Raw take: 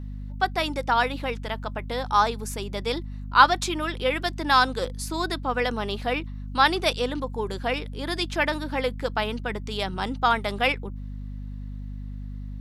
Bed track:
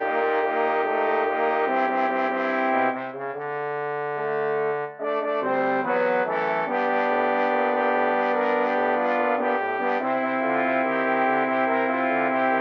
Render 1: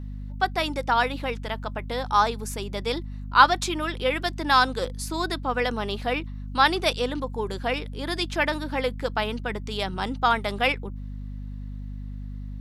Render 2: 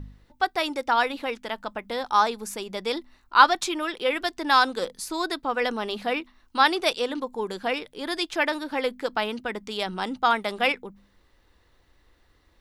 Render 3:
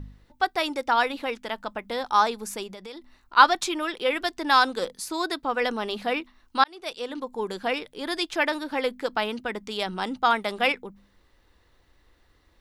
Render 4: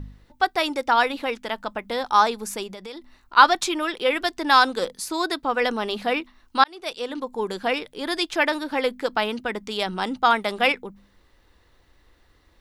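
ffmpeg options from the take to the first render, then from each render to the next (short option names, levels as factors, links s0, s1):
-af anull
-af "bandreject=f=50:t=h:w=4,bandreject=f=100:t=h:w=4,bandreject=f=150:t=h:w=4,bandreject=f=200:t=h:w=4,bandreject=f=250:t=h:w=4"
-filter_complex "[0:a]asplit=3[s0][s1][s2];[s0]afade=t=out:st=2.66:d=0.02[s3];[s1]acompressor=threshold=0.0126:ratio=5:attack=3.2:release=140:knee=1:detection=peak,afade=t=in:st=2.66:d=0.02,afade=t=out:st=3.36:d=0.02[s4];[s2]afade=t=in:st=3.36:d=0.02[s5];[s3][s4][s5]amix=inputs=3:normalize=0,asettb=1/sr,asplit=3[s6][s7][s8];[s6]atrim=end=4.934[s9];[s7]atrim=start=4.93:end=5.43,asetpts=PTS-STARTPTS,afade=t=in:d=0.004:c=qsin,afade=t=out:st=0.496:d=0.004:c=qsin,highpass=f=56:p=1[s10];[s8]atrim=start=5.426[s11];[s9][s10]acrossfade=d=0.004:c1=hsin:c2=qsin[s12];[s12][s11]acrossfade=d=0.004:c1=qsin:c2=hsin,asplit=2[s13][s14];[s13]atrim=end=6.64,asetpts=PTS-STARTPTS,afade=t=out:st=6.636:d=0.004:c=hsin[s15];[s14]atrim=start=6.64,asetpts=PTS-STARTPTS,afade=t=in:d=0.79[s16];[s15][s16]concat=n=2:v=0:a=1"
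-af "volume=1.41,alimiter=limit=0.891:level=0:latency=1"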